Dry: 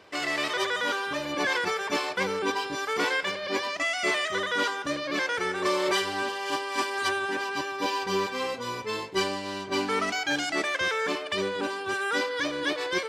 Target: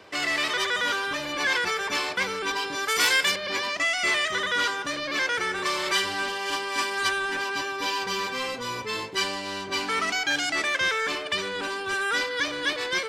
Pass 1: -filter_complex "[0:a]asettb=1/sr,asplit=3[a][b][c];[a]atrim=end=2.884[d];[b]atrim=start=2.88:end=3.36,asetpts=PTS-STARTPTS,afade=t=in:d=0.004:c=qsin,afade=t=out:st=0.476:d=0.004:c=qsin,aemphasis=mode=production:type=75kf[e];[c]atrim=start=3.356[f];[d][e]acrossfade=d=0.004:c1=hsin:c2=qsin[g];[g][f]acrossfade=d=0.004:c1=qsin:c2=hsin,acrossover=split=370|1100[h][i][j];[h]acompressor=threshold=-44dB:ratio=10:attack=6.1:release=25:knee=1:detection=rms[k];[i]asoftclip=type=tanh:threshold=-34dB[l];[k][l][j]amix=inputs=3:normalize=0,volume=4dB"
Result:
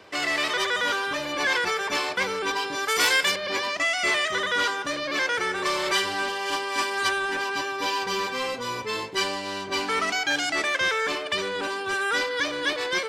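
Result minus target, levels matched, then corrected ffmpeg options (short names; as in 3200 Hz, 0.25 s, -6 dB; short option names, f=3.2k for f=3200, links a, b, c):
soft clip: distortion -5 dB
-filter_complex "[0:a]asettb=1/sr,asplit=3[a][b][c];[a]atrim=end=2.884[d];[b]atrim=start=2.88:end=3.36,asetpts=PTS-STARTPTS,afade=t=in:d=0.004:c=qsin,afade=t=out:st=0.476:d=0.004:c=qsin,aemphasis=mode=production:type=75kf[e];[c]atrim=start=3.356[f];[d][e]acrossfade=d=0.004:c1=hsin:c2=qsin[g];[g][f]acrossfade=d=0.004:c1=qsin:c2=hsin,acrossover=split=370|1100[h][i][j];[h]acompressor=threshold=-44dB:ratio=10:attack=6.1:release=25:knee=1:detection=rms[k];[i]asoftclip=type=tanh:threshold=-41dB[l];[k][l][j]amix=inputs=3:normalize=0,volume=4dB"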